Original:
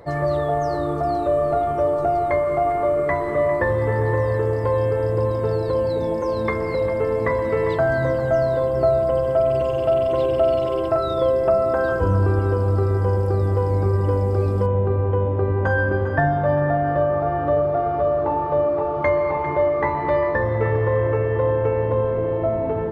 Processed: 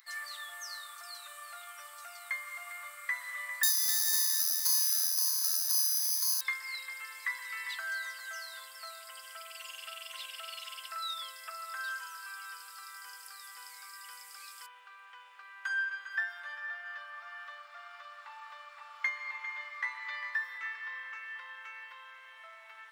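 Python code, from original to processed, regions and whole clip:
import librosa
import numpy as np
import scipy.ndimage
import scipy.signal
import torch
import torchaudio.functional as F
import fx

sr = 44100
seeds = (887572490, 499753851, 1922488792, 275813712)

y = fx.chain(x, sr, fx.lowpass(hz=1600.0, slope=6),
    fx.resample_bad(factor=8, down='none', up='hold'), at=(3.63, 6.41))
y = scipy.signal.sosfilt(scipy.signal.butter(4, 1400.0, 'highpass', fs=sr, output='sos'), y)
y = np.diff(y, prepend=0.0)
y = y * 10.0 ** (7.0 / 20.0)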